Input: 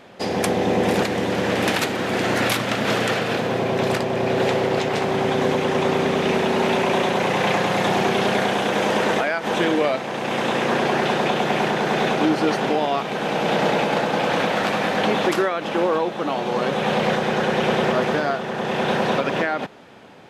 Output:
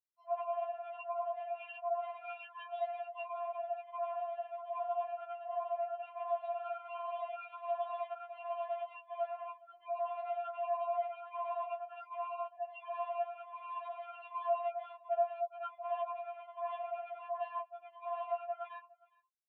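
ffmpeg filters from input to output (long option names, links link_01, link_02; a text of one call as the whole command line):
ffmpeg -i in.wav -filter_complex "[0:a]afftfilt=real='re*pow(10,11/40*sin(2*PI*(1*log(max(b,1)*sr/1024/100)/log(2)-(1.3)*(pts-256)/sr)))':imag='im*pow(10,11/40*sin(2*PI*(1*log(max(b,1)*sr/1024/100)/log(2)-(1.3)*(pts-256)/sr)))':win_size=1024:overlap=0.75,aemphasis=mode=production:type=bsi,afftfilt=real='re*gte(hypot(re,im),0.355)':imag='im*gte(hypot(re,im),0.355)':win_size=1024:overlap=0.75,acompressor=threshold=-30dB:ratio=10,aeval=exprs='val(0)*sin(2*PI*33*n/s)':channel_layout=same,asoftclip=type=tanh:threshold=-37.5dB,flanger=delay=1.2:depth=8.2:regen=26:speed=1.6:shape=triangular,highpass=frequency=210:width_type=q:width=0.5412,highpass=frequency=210:width_type=q:width=1.307,lowpass=frequency=2900:width_type=q:width=0.5176,lowpass=frequency=2900:width_type=q:width=0.7071,lowpass=frequency=2900:width_type=q:width=1.932,afreqshift=270,asplit=3[link_01][link_02][link_03];[link_01]bandpass=frequency=730:width_type=q:width=8,volume=0dB[link_04];[link_02]bandpass=frequency=1090:width_type=q:width=8,volume=-6dB[link_05];[link_03]bandpass=frequency=2440:width_type=q:width=8,volume=-9dB[link_06];[link_04][link_05][link_06]amix=inputs=3:normalize=0,aecho=1:1:428:0.0708,asetrate=45938,aresample=44100,afftfilt=real='re*4*eq(mod(b,16),0)':imag='im*4*eq(mod(b,16),0)':win_size=2048:overlap=0.75,volume=16.5dB" out.wav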